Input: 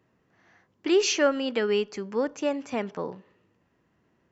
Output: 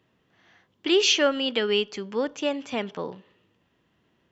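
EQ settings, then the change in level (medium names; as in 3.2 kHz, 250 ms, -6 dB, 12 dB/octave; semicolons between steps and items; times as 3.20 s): peaking EQ 3.3 kHz +11.5 dB 0.63 oct; 0.0 dB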